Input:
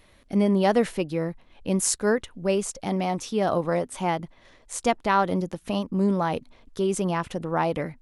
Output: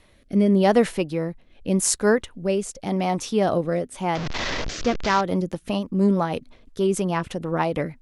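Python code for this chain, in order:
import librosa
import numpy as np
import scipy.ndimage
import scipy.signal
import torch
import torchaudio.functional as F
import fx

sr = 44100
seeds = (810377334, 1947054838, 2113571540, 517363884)

y = fx.delta_mod(x, sr, bps=32000, step_db=-23.5, at=(4.15, 5.21))
y = fx.rotary_switch(y, sr, hz=0.85, then_hz=6.3, switch_at_s=4.7)
y = y * librosa.db_to_amplitude(4.0)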